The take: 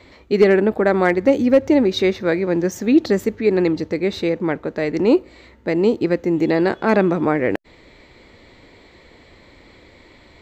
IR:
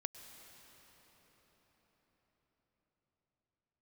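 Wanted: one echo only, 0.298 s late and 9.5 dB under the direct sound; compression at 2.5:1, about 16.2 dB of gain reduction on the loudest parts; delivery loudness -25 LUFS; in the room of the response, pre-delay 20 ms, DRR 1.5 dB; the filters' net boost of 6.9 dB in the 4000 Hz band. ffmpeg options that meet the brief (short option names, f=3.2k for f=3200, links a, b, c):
-filter_complex "[0:a]equalizer=f=4k:t=o:g=7.5,acompressor=threshold=-34dB:ratio=2.5,aecho=1:1:298:0.335,asplit=2[a][b];[1:a]atrim=start_sample=2205,adelay=20[c];[b][c]afir=irnorm=-1:irlink=0,volume=0.5dB[d];[a][d]amix=inputs=2:normalize=0,volume=4dB"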